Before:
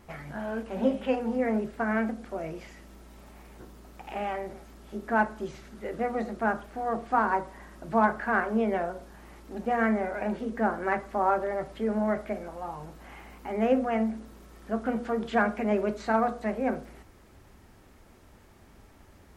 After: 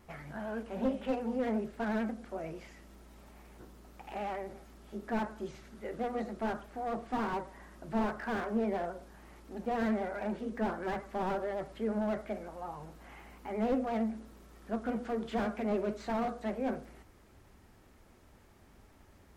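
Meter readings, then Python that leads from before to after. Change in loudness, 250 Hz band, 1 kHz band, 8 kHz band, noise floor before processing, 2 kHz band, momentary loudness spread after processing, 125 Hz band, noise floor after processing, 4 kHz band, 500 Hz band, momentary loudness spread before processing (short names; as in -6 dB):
-6.5 dB, -5.0 dB, -8.5 dB, n/a, -55 dBFS, -10.5 dB, 18 LU, -4.5 dB, -60 dBFS, -3.0 dB, -6.0 dB, 16 LU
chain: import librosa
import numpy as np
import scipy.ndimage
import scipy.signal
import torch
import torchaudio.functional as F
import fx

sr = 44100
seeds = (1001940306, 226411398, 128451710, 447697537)

y = fx.vibrato(x, sr, rate_hz=11.0, depth_cents=49.0)
y = fx.slew_limit(y, sr, full_power_hz=38.0)
y = y * 10.0 ** (-5.0 / 20.0)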